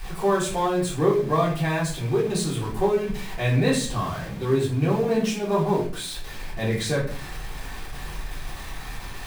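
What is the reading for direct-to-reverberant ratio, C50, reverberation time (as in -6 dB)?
-8.0 dB, 5.5 dB, 0.45 s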